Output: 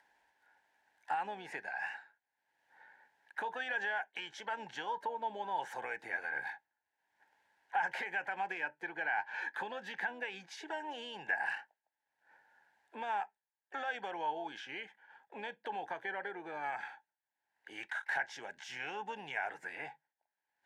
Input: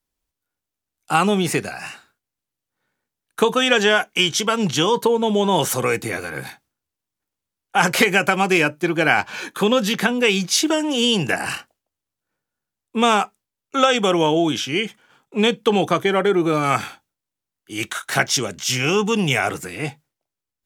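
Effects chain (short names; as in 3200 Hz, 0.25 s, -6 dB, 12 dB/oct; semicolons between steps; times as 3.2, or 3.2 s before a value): upward compressor, threshold -39 dBFS; limiter -7.5 dBFS, peak gain reduction 6.5 dB; compressor 2.5:1, threshold -33 dBFS, peak gain reduction 13 dB; harmoniser +5 st -18 dB; double band-pass 1200 Hz, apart 0.92 oct; gain +3 dB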